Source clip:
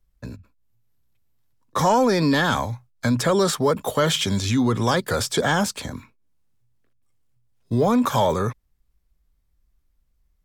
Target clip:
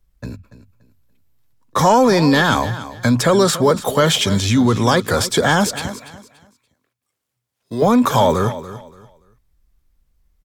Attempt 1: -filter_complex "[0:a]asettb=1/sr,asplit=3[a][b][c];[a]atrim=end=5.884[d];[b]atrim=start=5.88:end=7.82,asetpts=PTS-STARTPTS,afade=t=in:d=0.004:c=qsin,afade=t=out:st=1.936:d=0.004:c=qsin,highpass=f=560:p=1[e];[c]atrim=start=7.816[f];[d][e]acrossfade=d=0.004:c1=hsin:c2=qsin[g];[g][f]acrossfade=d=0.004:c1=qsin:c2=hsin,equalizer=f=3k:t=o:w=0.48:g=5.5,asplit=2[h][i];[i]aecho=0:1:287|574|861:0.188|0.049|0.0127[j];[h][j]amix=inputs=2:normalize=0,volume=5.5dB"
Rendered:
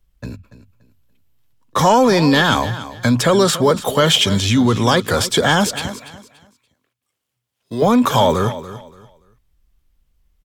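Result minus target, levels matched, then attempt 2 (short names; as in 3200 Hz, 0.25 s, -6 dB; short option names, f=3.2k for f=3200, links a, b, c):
4000 Hz band +3.0 dB
-filter_complex "[0:a]asettb=1/sr,asplit=3[a][b][c];[a]atrim=end=5.884[d];[b]atrim=start=5.88:end=7.82,asetpts=PTS-STARTPTS,afade=t=in:d=0.004:c=qsin,afade=t=out:st=1.936:d=0.004:c=qsin,highpass=f=560:p=1[e];[c]atrim=start=7.816[f];[d][e]acrossfade=d=0.004:c1=hsin:c2=qsin[g];[g][f]acrossfade=d=0.004:c1=qsin:c2=hsin,asplit=2[h][i];[i]aecho=0:1:287|574|861:0.188|0.049|0.0127[j];[h][j]amix=inputs=2:normalize=0,volume=5.5dB"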